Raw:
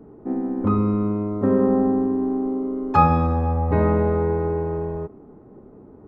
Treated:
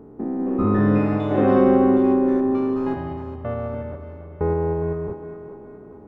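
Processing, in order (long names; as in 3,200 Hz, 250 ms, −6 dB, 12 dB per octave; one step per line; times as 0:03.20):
spectrum averaged block by block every 200 ms
0:02.94–0:04.41: resonances in every octave C#, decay 0.5 s
on a send: feedback echo with a high-pass in the loop 414 ms, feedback 52%, high-pass 290 Hz, level −9.5 dB
on the sum: delay with pitch and tempo change per echo 330 ms, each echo +6 semitones, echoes 3, each echo −6 dB
level +2.5 dB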